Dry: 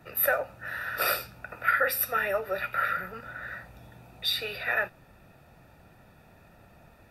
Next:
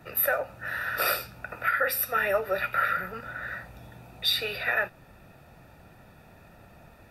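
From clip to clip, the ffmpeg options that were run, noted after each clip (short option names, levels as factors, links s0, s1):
-af "alimiter=limit=0.141:level=0:latency=1:release=291,volume=1.41"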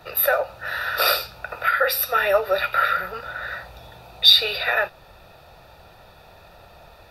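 -af "equalizer=f=125:t=o:w=1:g=-5,equalizer=f=250:t=o:w=1:g=-12,equalizer=f=500:t=o:w=1:g=3,equalizer=f=1000:t=o:w=1:g=3,equalizer=f=2000:t=o:w=1:g=-5,equalizer=f=4000:t=o:w=1:g=10,equalizer=f=8000:t=o:w=1:g=-5,volume=2"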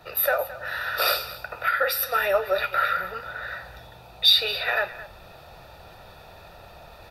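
-af "areverse,acompressor=mode=upward:threshold=0.0158:ratio=2.5,areverse,asoftclip=type=tanh:threshold=0.631,aecho=1:1:217:0.158,volume=0.708"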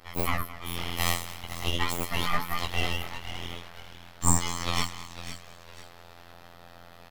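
-filter_complex "[0:a]afftfilt=real='hypot(re,im)*cos(PI*b)':imag='0':win_size=2048:overlap=0.75,asplit=4[s0][s1][s2][s3];[s1]adelay=500,afreqshift=48,volume=0.251[s4];[s2]adelay=1000,afreqshift=96,volume=0.0804[s5];[s3]adelay=1500,afreqshift=144,volume=0.0257[s6];[s0][s4][s5][s6]amix=inputs=4:normalize=0,aeval=exprs='abs(val(0))':c=same"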